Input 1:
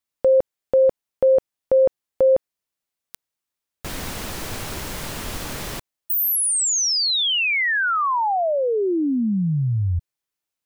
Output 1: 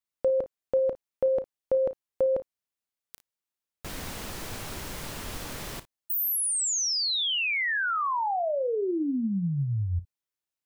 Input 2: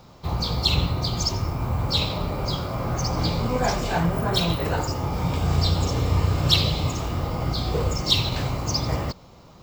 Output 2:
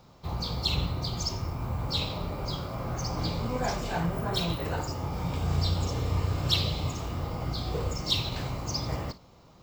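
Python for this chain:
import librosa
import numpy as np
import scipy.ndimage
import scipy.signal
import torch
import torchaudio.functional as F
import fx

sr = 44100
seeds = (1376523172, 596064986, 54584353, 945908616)

y = fx.room_early_taps(x, sr, ms=(35, 56), db=(-15.5, -18.0))
y = F.gain(torch.from_numpy(y), -7.0).numpy()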